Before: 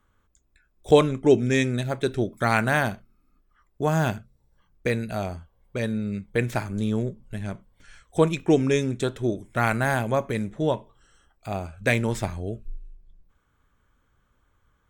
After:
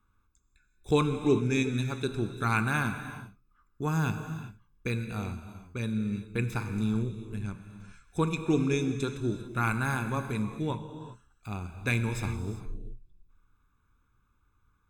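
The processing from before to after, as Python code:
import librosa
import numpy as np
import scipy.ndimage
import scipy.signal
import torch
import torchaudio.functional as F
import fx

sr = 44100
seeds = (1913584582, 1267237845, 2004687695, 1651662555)

y = x + 0.76 * np.pad(x, (int(0.8 * sr / 1000.0), 0))[:len(x)]
y = fx.rev_gated(y, sr, seeds[0], gate_ms=420, shape='flat', drr_db=8.0)
y = F.gain(torch.from_numpy(y), -8.0).numpy()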